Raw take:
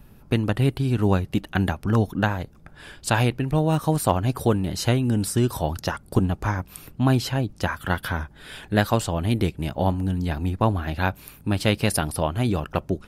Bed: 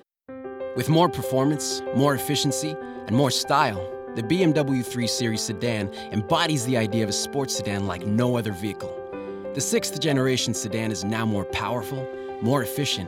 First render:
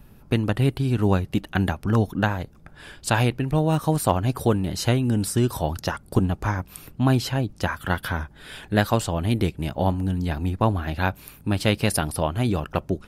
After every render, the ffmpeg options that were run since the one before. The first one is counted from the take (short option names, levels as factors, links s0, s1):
-af anull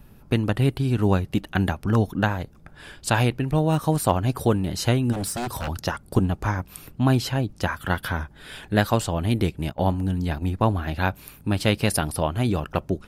-filter_complex "[0:a]asplit=3[s0][s1][s2];[s0]afade=t=out:st=5.12:d=0.02[s3];[s1]aeval=exprs='0.075*(abs(mod(val(0)/0.075+3,4)-2)-1)':c=same,afade=t=in:st=5.12:d=0.02,afade=t=out:st=5.67:d=0.02[s4];[s2]afade=t=in:st=5.67:d=0.02[s5];[s3][s4][s5]amix=inputs=3:normalize=0,asplit=3[s6][s7][s8];[s6]afade=t=out:st=9.69:d=0.02[s9];[s7]agate=range=0.251:threshold=0.0316:ratio=16:release=100:detection=peak,afade=t=in:st=9.69:d=0.02,afade=t=out:st=10.5:d=0.02[s10];[s8]afade=t=in:st=10.5:d=0.02[s11];[s9][s10][s11]amix=inputs=3:normalize=0"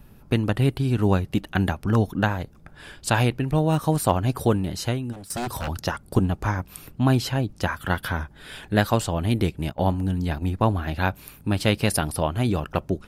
-filter_complex "[0:a]asplit=2[s0][s1];[s0]atrim=end=5.3,asetpts=PTS-STARTPTS,afade=t=out:st=4.56:d=0.74:silence=0.125893[s2];[s1]atrim=start=5.3,asetpts=PTS-STARTPTS,afade=t=in:d=0.004:c=hsin:silence=0.125893[s3];[s2][s3]concat=n=2:v=0:a=1"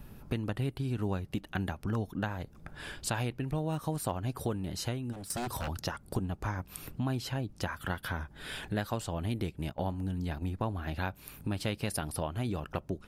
-af "acompressor=threshold=0.0158:ratio=2.5"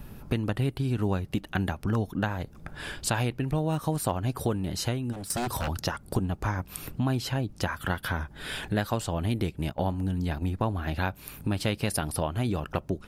-af "volume=1.88"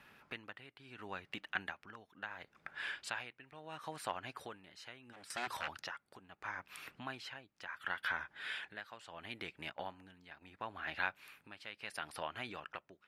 -af "bandpass=f=2000:t=q:w=1.4:csg=0,tremolo=f=0.73:d=0.75"